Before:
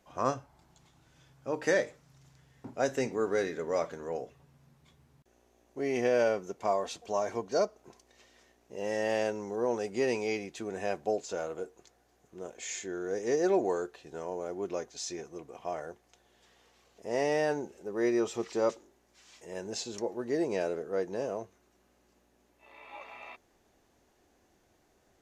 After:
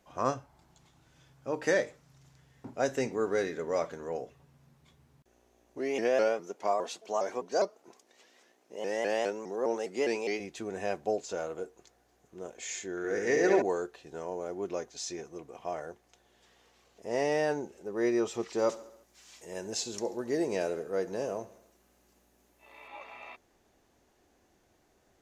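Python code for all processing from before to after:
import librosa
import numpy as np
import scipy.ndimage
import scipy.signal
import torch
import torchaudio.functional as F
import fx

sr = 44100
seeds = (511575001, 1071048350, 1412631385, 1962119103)

y = fx.chain(x, sr, fx.highpass(hz=250.0, slope=12),
    fx.vibrato_shape(shape='saw_up', rate_hz=4.9, depth_cents=160.0), at=(5.78, 10.4))
y = fx.chain(y, sr, fx.peak_eq(hz=2000.0, db=11.0, octaves=0.83),
    fx.room_flutter(wall_m=11.9, rt60_s=0.85), at=(12.97, 13.62))
y = fx.chain(y, sr, fx.high_shelf(hz=7500.0, db=10.0),
    fx.echo_feedback(ms=68, feedback_pct=60, wet_db=-18), at=(18.58, 22.88))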